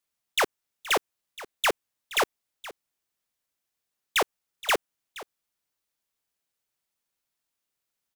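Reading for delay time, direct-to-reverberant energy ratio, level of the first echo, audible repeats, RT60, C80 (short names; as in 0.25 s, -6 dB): 0.472 s, none, -17.5 dB, 1, none, none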